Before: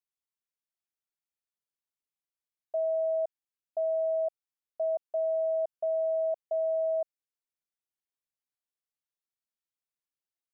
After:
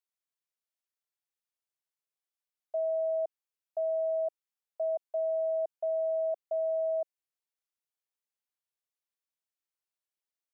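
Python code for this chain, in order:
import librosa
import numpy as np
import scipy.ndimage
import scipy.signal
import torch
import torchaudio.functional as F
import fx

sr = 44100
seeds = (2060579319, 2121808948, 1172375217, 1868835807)

y = scipy.signal.sosfilt(scipy.signal.butter(4, 370.0, 'highpass', fs=sr, output='sos'), x)
y = F.gain(torch.from_numpy(y), -1.5).numpy()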